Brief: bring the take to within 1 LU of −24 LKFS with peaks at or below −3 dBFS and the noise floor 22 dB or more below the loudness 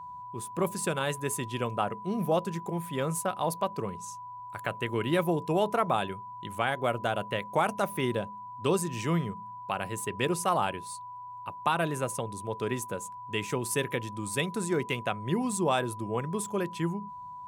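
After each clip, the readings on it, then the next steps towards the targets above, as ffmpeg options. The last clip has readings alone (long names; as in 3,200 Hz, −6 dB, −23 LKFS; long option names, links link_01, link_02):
interfering tone 990 Hz; level of the tone −40 dBFS; integrated loudness −31.0 LKFS; sample peak −13.5 dBFS; target loudness −24.0 LKFS
→ -af "bandreject=frequency=990:width=30"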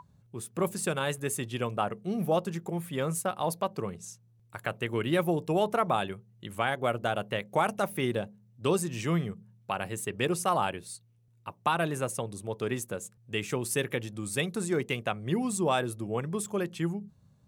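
interfering tone none found; integrated loudness −31.0 LKFS; sample peak −13.5 dBFS; target loudness −24.0 LKFS
→ -af "volume=7dB"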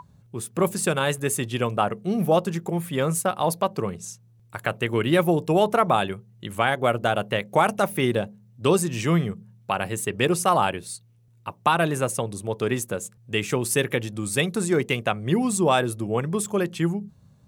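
integrated loudness −24.0 LKFS; sample peak −6.5 dBFS; background noise floor −56 dBFS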